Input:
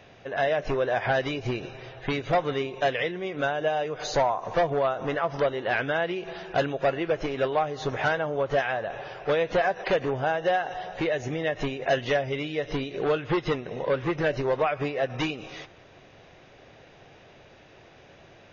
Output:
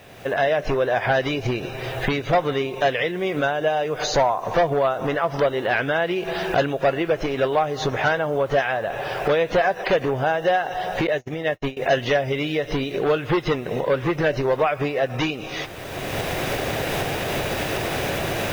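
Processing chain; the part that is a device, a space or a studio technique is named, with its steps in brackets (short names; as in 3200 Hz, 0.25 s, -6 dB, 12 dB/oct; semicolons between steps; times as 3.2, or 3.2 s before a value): cheap recorder with automatic gain (white noise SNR 37 dB; recorder AGC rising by 25 dB/s); 11.07–11.77 gate -27 dBFS, range -56 dB; gain +4.5 dB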